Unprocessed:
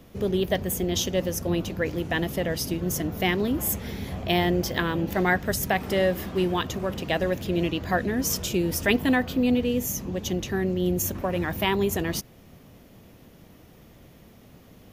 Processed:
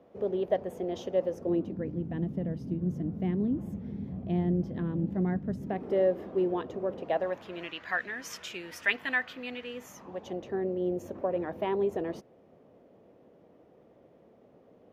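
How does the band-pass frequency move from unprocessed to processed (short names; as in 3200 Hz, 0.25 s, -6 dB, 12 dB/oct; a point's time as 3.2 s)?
band-pass, Q 1.6
1.26 s 580 Hz
1.92 s 190 Hz
5.51 s 190 Hz
5.96 s 460 Hz
6.91 s 460 Hz
7.75 s 1800 Hz
9.59 s 1800 Hz
10.53 s 510 Hz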